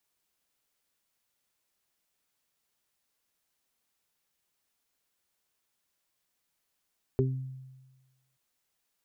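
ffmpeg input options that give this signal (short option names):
-f lavfi -i "aevalsrc='0.0668*pow(10,-3*t/1.26)*sin(2*PI*131*t)+0.0376*pow(10,-3*t/0.49)*sin(2*PI*262*t)+0.0944*pow(10,-3*t/0.2)*sin(2*PI*393*t)':d=1.18:s=44100"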